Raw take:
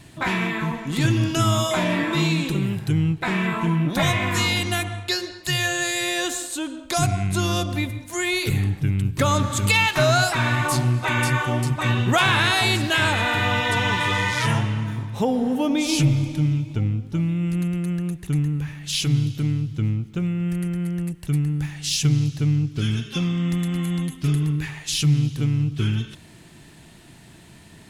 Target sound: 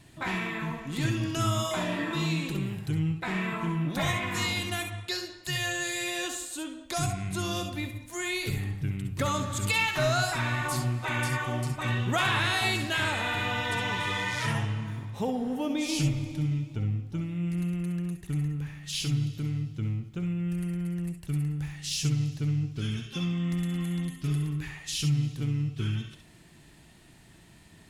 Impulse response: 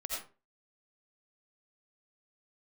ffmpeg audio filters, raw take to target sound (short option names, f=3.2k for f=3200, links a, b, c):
-filter_complex "[0:a]asettb=1/sr,asplit=3[a][b][c];[a]atrim=end=1.774[d];[b]atrim=start=1.77:end=2.29,asetpts=PTS-STARTPTS,afade=t=in:d=0.004:c=qsin,afade=t=out:st=0.516:d=0.004:c=qsin,bandreject=f=2.2k:w=8[e];[c]atrim=start=2.286[f];[d][e]acrossfade=d=0.004:c1=hsin:c2=qsin[g];[g][f]acrossfade=d=0.004:c1=qsin:c2=hsin[h];[1:a]atrim=start_sample=2205,atrim=end_sample=3087[i];[h][i]afir=irnorm=-1:irlink=0,volume=-4.5dB"